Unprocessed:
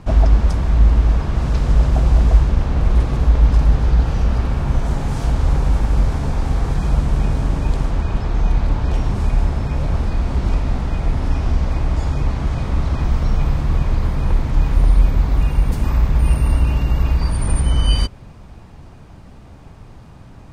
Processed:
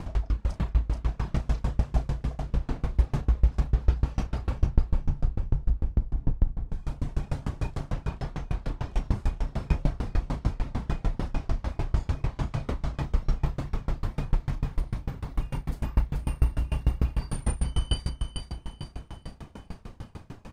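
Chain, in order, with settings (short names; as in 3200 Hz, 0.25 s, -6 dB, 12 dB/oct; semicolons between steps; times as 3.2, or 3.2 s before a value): reverb removal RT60 1.3 s; 4.58–6.69 tilt -4 dB/oct; compressor 6:1, threshold -25 dBFS, peak gain reduction 28.5 dB; doubler 34 ms -3 dB; feedback echo 0.43 s, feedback 51%, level -6.5 dB; dB-ramp tremolo decaying 6.7 Hz, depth 29 dB; gain +6 dB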